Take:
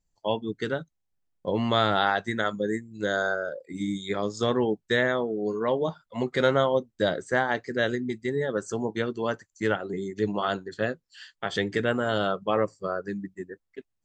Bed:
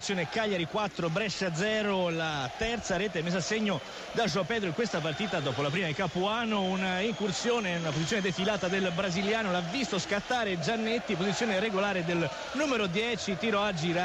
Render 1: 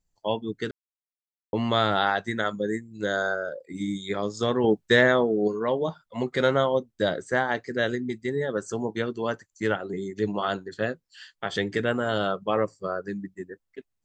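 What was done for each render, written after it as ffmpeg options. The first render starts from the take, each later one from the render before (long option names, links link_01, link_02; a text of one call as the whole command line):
ffmpeg -i in.wav -filter_complex "[0:a]asettb=1/sr,asplit=3[link_01][link_02][link_03];[link_01]atrim=end=4.644[link_04];[link_02]atrim=start=4.64:end=5.48,asetpts=PTS-STARTPTS,afade=type=in:duration=0.004:curve=qsin,afade=type=out:start_time=0.836:duration=0.004:curve=qsin,acontrast=40[link_05];[link_03]atrim=start=5.476[link_06];[link_04][link_05]acrossfade=duration=0.004:curve1=hsin:curve2=qsin[link_07];[link_07][link_06]acrossfade=duration=0.004:curve1=qsin:curve2=hsin,asplit=3[link_08][link_09][link_10];[link_08]atrim=end=0.71,asetpts=PTS-STARTPTS,afade=type=out:start_time=0.706:duration=0.004:curve=hsin[link_11];[link_09]atrim=start=0.71:end=1.53,asetpts=PTS-STARTPTS,volume=0[link_12];[link_10]atrim=start=1.53,asetpts=PTS-STARTPTS,afade=type=in:duration=0.004:curve=hsin[link_13];[link_11][link_12][link_13]concat=n=3:v=0:a=1" out.wav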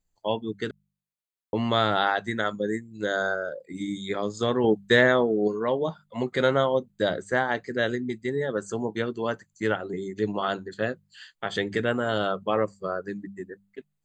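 ffmpeg -i in.wav -af "bandreject=frequency=5500:width=5.2,bandreject=frequency=49.58:width_type=h:width=4,bandreject=frequency=99.16:width_type=h:width=4,bandreject=frequency=148.74:width_type=h:width=4,bandreject=frequency=198.32:width_type=h:width=4" out.wav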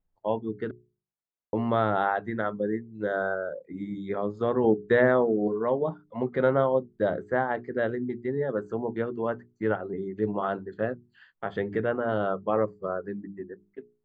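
ffmpeg -i in.wav -af "lowpass=1300,bandreject=frequency=60:width_type=h:width=6,bandreject=frequency=120:width_type=h:width=6,bandreject=frequency=180:width_type=h:width=6,bandreject=frequency=240:width_type=h:width=6,bandreject=frequency=300:width_type=h:width=6,bandreject=frequency=360:width_type=h:width=6,bandreject=frequency=420:width_type=h:width=6" out.wav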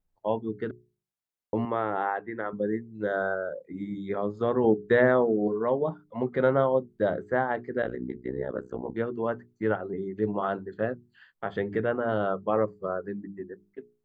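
ffmpeg -i in.wav -filter_complex "[0:a]asettb=1/sr,asplit=3[link_01][link_02][link_03];[link_01]atrim=end=1.654[link_04];[link_02]atrim=start=1.65:end=2.53,asetpts=PTS-STARTPTS,afade=type=in:duration=0.004:curve=qsin,afade=type=out:start_time=0.876:duration=0.004:curve=qsin,highpass=200,equalizer=frequency=220:width_type=q:width=4:gain=-8,equalizer=frequency=640:width_type=q:width=4:gain=-7,equalizer=frequency=1400:width_type=q:width=4:gain=-5,lowpass=frequency=2600:width=0.5412,lowpass=frequency=2600:width=1.3066[link_05];[link_03]atrim=start=2.526[link_06];[link_04][link_05]acrossfade=duration=0.004:curve1=hsin:curve2=qsin[link_07];[link_07][link_06]acrossfade=duration=0.004:curve1=qsin:curve2=hsin,asettb=1/sr,asplit=3[link_08][link_09][link_10];[link_08]atrim=end=7.824[link_11];[link_09]atrim=start=7.82:end=8.95,asetpts=PTS-STARTPTS,afade=type=in:duration=0.004:curve=qsin,afade=type=out:start_time=1.126:duration=0.004:curve=qsin,tremolo=f=64:d=0.974[link_12];[link_10]atrim=start=8.946[link_13];[link_11][link_12]acrossfade=duration=0.004:curve1=hsin:curve2=qsin[link_14];[link_14][link_13]acrossfade=duration=0.004:curve1=qsin:curve2=hsin" out.wav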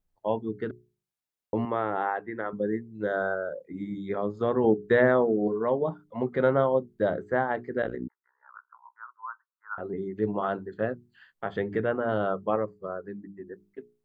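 ffmpeg -i in.wav -filter_complex "[0:a]asettb=1/sr,asplit=3[link_01][link_02][link_03];[link_01]atrim=end=8.084[link_04];[link_02]atrim=start=8.08:end=9.78,asetpts=PTS-STARTPTS,afade=type=in:duration=0.004:curve=qsin,afade=type=out:start_time=1.696:duration=0.004:curve=qsin,asuperpass=centerf=1200:order=8:qfactor=2.1[link_05];[link_03]atrim=start=9.776[link_06];[link_04][link_05]acrossfade=duration=0.004:curve1=hsin:curve2=qsin[link_07];[link_07][link_06]acrossfade=duration=0.004:curve1=qsin:curve2=hsin,asplit=3[link_08][link_09][link_10];[link_08]atrim=end=12.562[link_11];[link_09]atrim=start=12.558:end=13.472,asetpts=PTS-STARTPTS,volume=-4dB[link_12];[link_10]atrim=start=13.468[link_13];[link_11][link_12]acrossfade=duration=0.004:curve1=hsin:curve2=hsin[link_14];[link_14][link_13]acrossfade=duration=0.004:curve1=hsin:curve2=hsin" out.wav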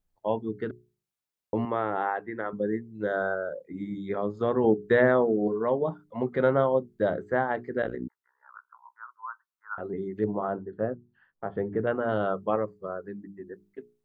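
ffmpeg -i in.wav -filter_complex "[0:a]asettb=1/sr,asplit=3[link_01][link_02][link_03];[link_01]atrim=end=10.244[link_04];[link_02]atrim=start=10.24:end=11.87,asetpts=PTS-STARTPTS,afade=type=in:duration=0.004:curve=qsin,afade=type=out:start_time=1.626:duration=0.004:curve=qsin,lowpass=1100[link_05];[link_03]atrim=start=11.866[link_06];[link_04][link_05]acrossfade=duration=0.004:curve1=hsin:curve2=qsin[link_07];[link_07][link_06]acrossfade=duration=0.004:curve1=qsin:curve2=hsin" out.wav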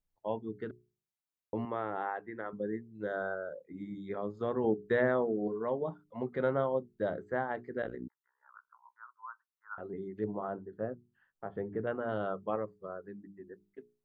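ffmpeg -i in.wav -af "volume=-7.5dB" out.wav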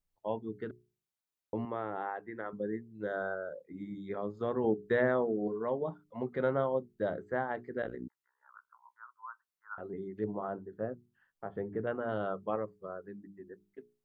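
ffmpeg -i in.wav -filter_complex "[0:a]asettb=1/sr,asplit=3[link_01][link_02][link_03];[link_01]atrim=end=1.564[link_04];[link_02]atrim=start=1.56:end=2.26,asetpts=PTS-STARTPTS,afade=type=in:duration=0.004:curve=qsin,afade=type=out:start_time=0.696:duration=0.004:curve=qsin,equalizer=frequency=2100:width=0.36:gain=-2.5[link_05];[link_03]atrim=start=2.256[link_06];[link_04][link_05]acrossfade=duration=0.004:curve1=hsin:curve2=qsin[link_07];[link_07][link_06]acrossfade=duration=0.004:curve1=qsin:curve2=hsin" out.wav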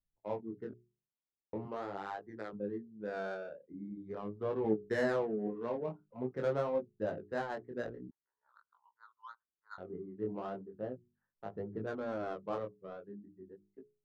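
ffmpeg -i in.wav -filter_complex "[0:a]acrossover=split=510[link_01][link_02];[link_02]adynamicsmooth=sensitivity=6:basefreq=800[link_03];[link_01][link_03]amix=inputs=2:normalize=0,flanger=delay=18.5:depth=7.6:speed=0.43" out.wav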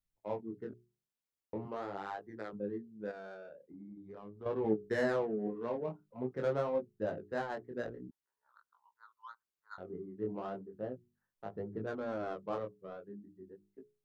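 ffmpeg -i in.wav -filter_complex "[0:a]asettb=1/sr,asplit=3[link_01][link_02][link_03];[link_01]atrim=end=3.114[link_04];[link_02]atrim=start=3.11:end=4.46,asetpts=PTS-STARTPTS,afade=type=in:duration=0.004:curve=qsin,afade=type=out:start_time=1.346:duration=0.004:curve=qsin,acompressor=threshold=-51dB:ratio=2:attack=3.2:release=140:knee=1:detection=peak[link_05];[link_03]atrim=start=4.456[link_06];[link_04][link_05]acrossfade=duration=0.004:curve1=hsin:curve2=qsin[link_07];[link_07][link_06]acrossfade=duration=0.004:curve1=qsin:curve2=hsin" out.wav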